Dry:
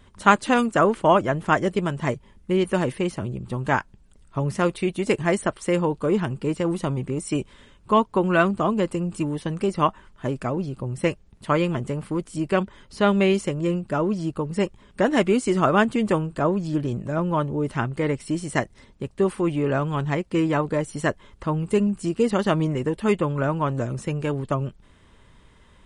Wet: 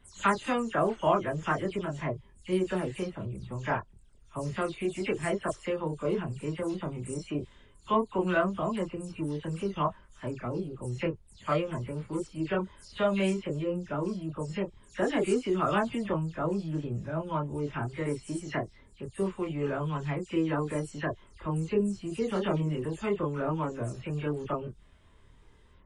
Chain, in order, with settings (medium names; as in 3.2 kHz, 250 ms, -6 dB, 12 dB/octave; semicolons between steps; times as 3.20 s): delay that grows with frequency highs early, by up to 144 ms; chorus voices 6, 0.17 Hz, delay 26 ms, depth 1.6 ms; trim -5 dB